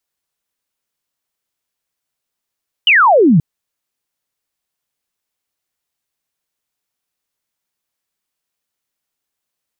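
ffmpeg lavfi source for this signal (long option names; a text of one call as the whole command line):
ffmpeg -f lavfi -i "aevalsrc='0.501*clip(t/0.002,0,1)*clip((0.53-t)/0.002,0,1)*sin(2*PI*3100*0.53/log(140/3100)*(exp(log(140/3100)*t/0.53)-1))':duration=0.53:sample_rate=44100" out.wav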